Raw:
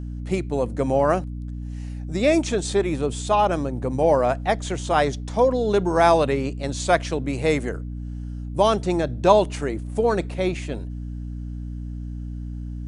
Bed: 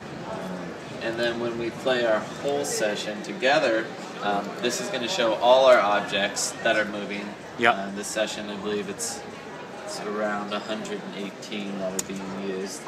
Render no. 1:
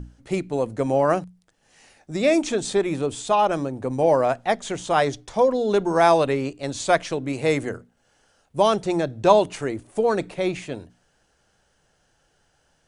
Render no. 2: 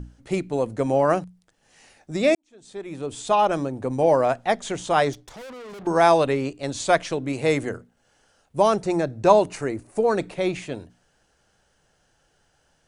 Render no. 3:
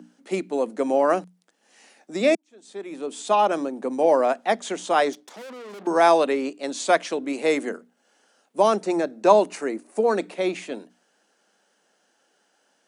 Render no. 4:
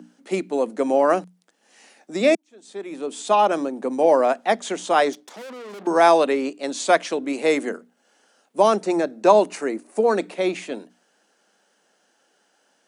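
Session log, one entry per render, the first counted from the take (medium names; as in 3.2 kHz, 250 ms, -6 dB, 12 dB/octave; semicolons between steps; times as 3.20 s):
hum notches 60/120/180/240/300 Hz
2.35–3.32 s: fade in quadratic; 5.13–5.87 s: valve stage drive 38 dB, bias 0.6; 8.59–10.15 s: peaking EQ 3.3 kHz -9.5 dB 0.31 oct
steep high-pass 200 Hz 48 dB/octave
trim +2 dB; peak limiter -3 dBFS, peak gain reduction 2.5 dB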